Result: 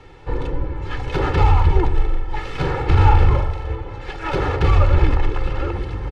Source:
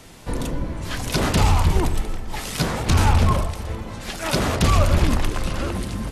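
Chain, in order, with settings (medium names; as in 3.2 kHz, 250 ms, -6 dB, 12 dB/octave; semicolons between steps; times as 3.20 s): tracing distortion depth 0.15 ms; low-pass 2.4 kHz 12 dB/octave; comb 2.3 ms, depth 93%; 1.90–3.74 s: flutter echo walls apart 7.3 m, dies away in 0.36 s; trim -1 dB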